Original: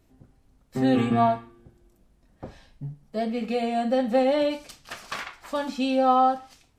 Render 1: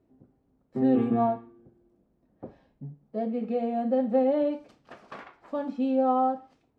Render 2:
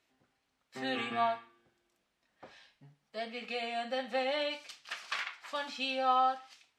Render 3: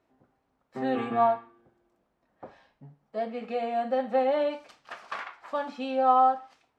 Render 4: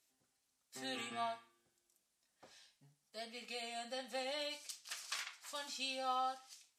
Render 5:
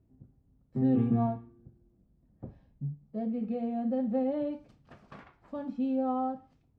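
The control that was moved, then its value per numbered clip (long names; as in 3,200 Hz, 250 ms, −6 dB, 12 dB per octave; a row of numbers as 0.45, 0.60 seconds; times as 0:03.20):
resonant band-pass, frequency: 340, 2,700, 970, 7,700, 130 Hertz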